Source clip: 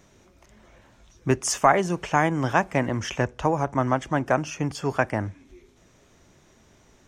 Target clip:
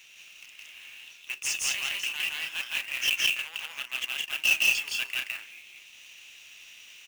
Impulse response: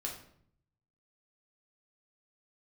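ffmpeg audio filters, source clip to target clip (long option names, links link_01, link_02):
-af "areverse,acompressor=threshold=-29dB:ratio=12,areverse,volume=29.5dB,asoftclip=hard,volume=-29.5dB,highpass=frequency=2700:width_type=q:width=9.5,acrusher=bits=2:mode=log:mix=0:aa=0.000001,aecho=1:1:166.2|198.3:1|0.562,volume=3dB"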